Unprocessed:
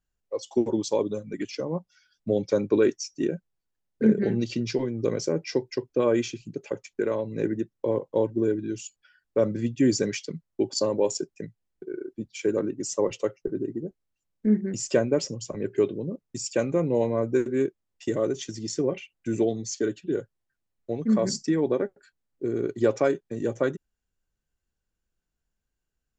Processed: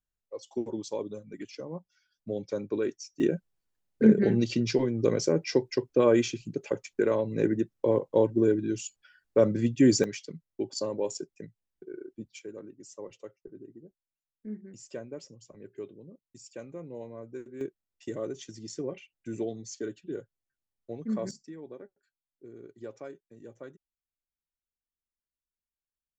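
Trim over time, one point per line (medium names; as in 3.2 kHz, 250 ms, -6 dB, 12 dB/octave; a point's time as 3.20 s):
-9 dB
from 3.20 s +1 dB
from 10.04 s -7 dB
from 12.39 s -17.5 dB
from 17.61 s -9 dB
from 21.31 s -20 dB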